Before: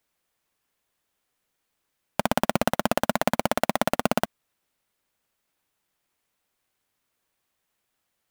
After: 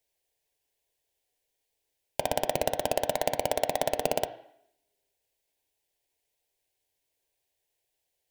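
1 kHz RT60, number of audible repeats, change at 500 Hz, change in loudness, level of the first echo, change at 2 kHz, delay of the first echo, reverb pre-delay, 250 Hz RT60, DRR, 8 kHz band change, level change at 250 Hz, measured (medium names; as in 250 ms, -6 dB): 0.70 s, no echo, -1.0 dB, -4.0 dB, no echo, -8.0 dB, no echo, 3 ms, 0.75 s, 8.5 dB, -2.0 dB, -13.0 dB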